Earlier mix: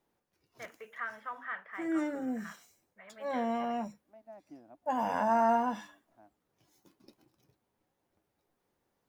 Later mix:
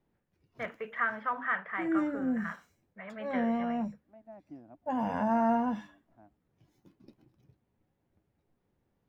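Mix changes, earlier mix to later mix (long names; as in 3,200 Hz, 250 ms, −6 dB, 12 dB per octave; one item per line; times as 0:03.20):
first voice +8.5 dB
background: add parametric band 1,100 Hz −3.5 dB 1.5 octaves
master: add bass and treble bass +10 dB, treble −12 dB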